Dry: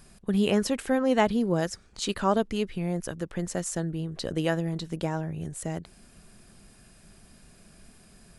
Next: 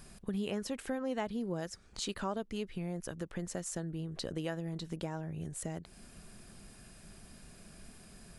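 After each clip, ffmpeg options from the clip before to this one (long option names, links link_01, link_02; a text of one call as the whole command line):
ffmpeg -i in.wav -af "acompressor=threshold=-39dB:ratio=2.5" out.wav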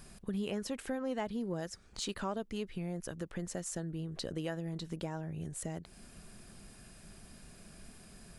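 ffmpeg -i in.wav -af "asoftclip=type=tanh:threshold=-22.5dB" out.wav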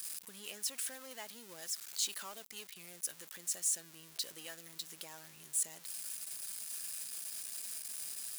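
ffmpeg -i in.wav -af "aeval=exprs='val(0)+0.5*0.0075*sgn(val(0))':channel_layout=same,aderivative,volume=6dB" out.wav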